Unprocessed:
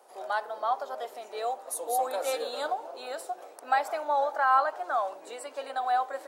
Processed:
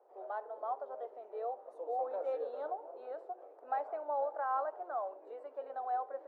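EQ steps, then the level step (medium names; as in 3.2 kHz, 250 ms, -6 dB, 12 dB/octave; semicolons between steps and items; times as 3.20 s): ladder band-pass 520 Hz, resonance 35%; +3.5 dB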